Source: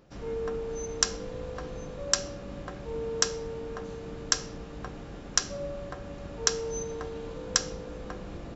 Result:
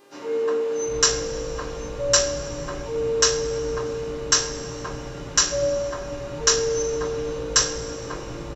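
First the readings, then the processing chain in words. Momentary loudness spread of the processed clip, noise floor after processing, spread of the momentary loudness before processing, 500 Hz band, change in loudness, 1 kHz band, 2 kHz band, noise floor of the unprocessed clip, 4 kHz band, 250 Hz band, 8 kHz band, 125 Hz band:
13 LU, -35 dBFS, 12 LU, +11.0 dB, +9.0 dB, +8.5 dB, +8.5 dB, -42 dBFS, +8.0 dB, +5.5 dB, no reading, +6.5 dB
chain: bands offset in time highs, lows 750 ms, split 230 Hz; two-slope reverb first 0.29 s, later 2.5 s, from -21 dB, DRR -10 dB; mains buzz 400 Hz, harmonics 34, -56 dBFS -5 dB/octave; trim -1.5 dB

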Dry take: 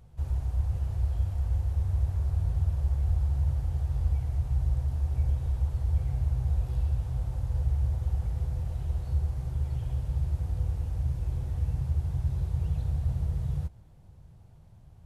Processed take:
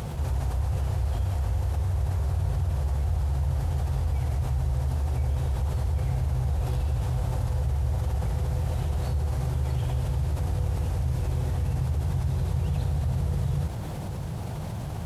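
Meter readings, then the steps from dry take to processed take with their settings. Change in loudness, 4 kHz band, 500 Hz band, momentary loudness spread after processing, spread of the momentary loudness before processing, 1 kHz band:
+2.0 dB, no reading, +11.5 dB, 1 LU, 4 LU, +11.5 dB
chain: high-pass 190 Hz 6 dB/octave; level flattener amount 70%; trim +6.5 dB

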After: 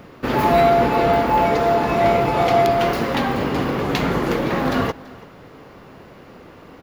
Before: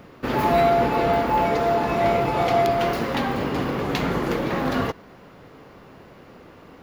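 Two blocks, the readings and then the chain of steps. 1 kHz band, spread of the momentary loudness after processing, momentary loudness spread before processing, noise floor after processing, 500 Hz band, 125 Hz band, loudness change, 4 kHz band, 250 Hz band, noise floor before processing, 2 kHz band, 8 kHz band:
+3.5 dB, 6 LU, 6 LU, -44 dBFS, +3.5 dB, +3.5 dB, +3.5 dB, +3.5 dB, +3.5 dB, -47 dBFS, +3.5 dB, +3.5 dB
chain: delay 334 ms -21.5 dB; trim +3.5 dB

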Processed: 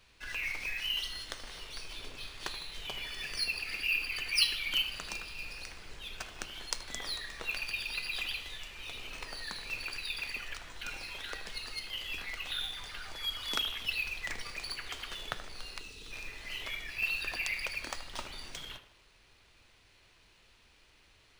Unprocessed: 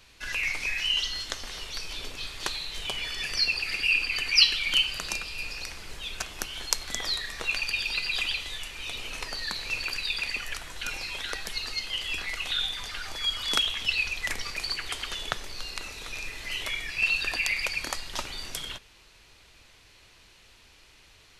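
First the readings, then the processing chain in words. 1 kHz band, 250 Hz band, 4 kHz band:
-6.5 dB, -6.0 dB, -8.0 dB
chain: tape echo 77 ms, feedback 54%, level -11 dB, low-pass 2.6 kHz; time-frequency box 15.80–16.11 s, 480–2500 Hz -10 dB; flange 0.23 Hz, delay 1.6 ms, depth 7.5 ms, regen -87%; decimation joined by straight lines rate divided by 3×; trim -2 dB

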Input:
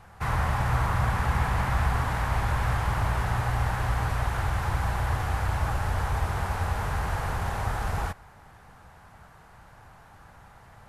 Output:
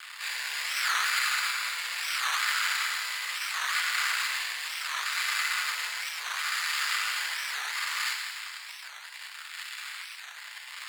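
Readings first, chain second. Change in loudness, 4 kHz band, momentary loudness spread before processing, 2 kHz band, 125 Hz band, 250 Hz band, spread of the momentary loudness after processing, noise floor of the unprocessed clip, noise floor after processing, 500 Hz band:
-1.0 dB, +13.5 dB, 4 LU, +6.0 dB, under -40 dB, under -40 dB, 14 LU, -52 dBFS, -45 dBFS, -20.5 dB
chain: careless resampling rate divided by 8×, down filtered, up hold; in parallel at -8 dB: fuzz box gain 53 dB, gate -48 dBFS; on the sum: rotary cabinet horn 0.7 Hz; high-pass 1.3 kHz 12 dB/octave; treble shelf 9.3 kHz -7.5 dB; frequency shift +390 Hz; FDN reverb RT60 1.7 s, high-frequency decay 1×, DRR 1 dB; warped record 45 rpm, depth 250 cents; trim -2 dB

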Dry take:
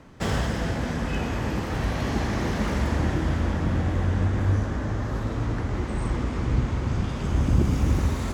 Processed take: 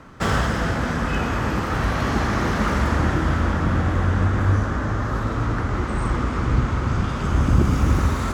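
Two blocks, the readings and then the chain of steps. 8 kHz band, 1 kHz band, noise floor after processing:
+3.5 dB, +8.5 dB, -26 dBFS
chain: peaking EQ 1.3 kHz +9 dB 0.65 oct; trim +3.5 dB

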